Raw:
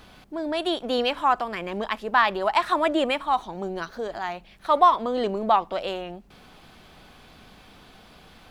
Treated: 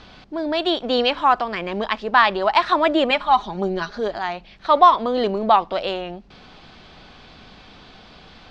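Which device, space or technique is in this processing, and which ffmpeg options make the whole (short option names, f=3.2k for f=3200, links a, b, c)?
presence and air boost: -filter_complex "[0:a]lowpass=f=5.5k:w=0.5412,lowpass=f=5.5k:w=1.3066,asettb=1/sr,asplit=3[a][b][c];[a]atrim=end=3.104[d];[b]atrim=start=3.1:end=4.1,asetpts=PTS-STARTPTS,afade=t=in:d=0.004:c=qsin,afade=t=out:st=0.996:d=0.004:c=qsin,aecho=1:1:4.9:0.64,atrim=end_sample=44100[e];[c]atrim=start=4.096[f];[d][e]acrossfade=d=0.004:c1=hsin:c2=qsin[g];[g][f]acrossfade=d=0.004:c1=qsin:c2=hsin,equalizer=f=4.4k:t=o:w=0.77:g=2.5,highshelf=f=9.1k:g=5,volume=4.5dB"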